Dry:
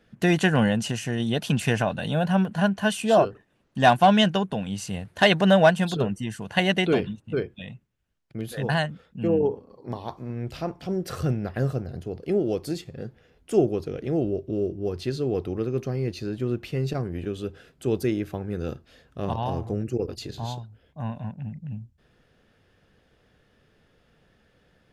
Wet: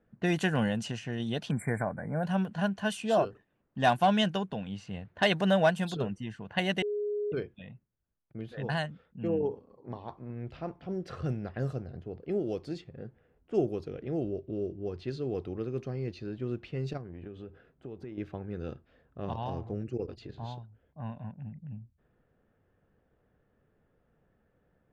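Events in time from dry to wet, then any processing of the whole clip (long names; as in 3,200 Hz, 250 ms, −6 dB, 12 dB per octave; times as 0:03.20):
0:01.50–0:02.24: time-frequency box erased 2,400–7,300 Hz
0:06.82–0:07.32: beep over 415 Hz −21.5 dBFS
0:16.97–0:18.18: downward compressor, threshold −31 dBFS
whole clip: low-pass that shuts in the quiet parts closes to 1,300 Hz, open at −18.5 dBFS; level −7.5 dB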